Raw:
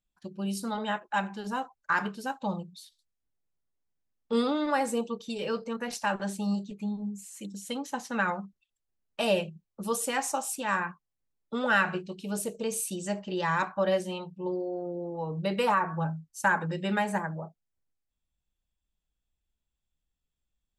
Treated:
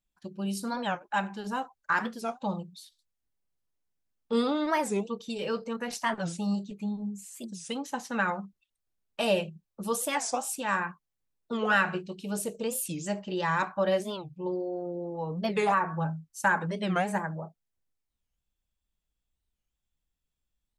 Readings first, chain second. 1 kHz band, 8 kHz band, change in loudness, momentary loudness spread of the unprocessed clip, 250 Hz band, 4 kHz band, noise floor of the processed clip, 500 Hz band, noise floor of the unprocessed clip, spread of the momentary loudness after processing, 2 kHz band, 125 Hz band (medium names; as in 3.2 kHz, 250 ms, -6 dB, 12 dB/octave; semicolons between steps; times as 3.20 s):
0.0 dB, -0.5 dB, 0.0 dB, 11 LU, 0.0 dB, 0.0 dB, -84 dBFS, 0.0 dB, -85 dBFS, 11 LU, 0.0 dB, 0.0 dB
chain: warped record 45 rpm, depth 250 cents